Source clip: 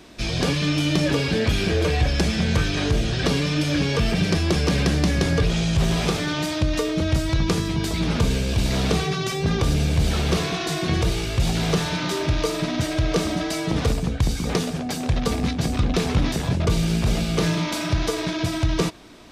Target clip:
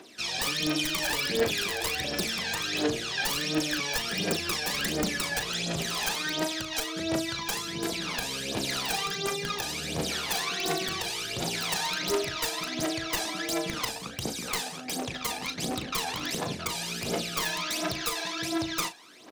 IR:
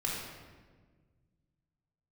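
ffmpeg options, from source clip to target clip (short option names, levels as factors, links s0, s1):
-filter_complex "[0:a]highpass=370,highshelf=f=2100:g=3.5,asetrate=45392,aresample=44100,atempo=0.971532,aeval=exprs='(mod(5.96*val(0)+1,2)-1)/5.96':c=same,aphaser=in_gain=1:out_gain=1:delay=1.3:decay=0.73:speed=1.4:type=triangular,asplit=2[s0][s1];[s1]adelay=37,volume=0.299[s2];[s0][s2]amix=inputs=2:normalize=0,volume=0.422"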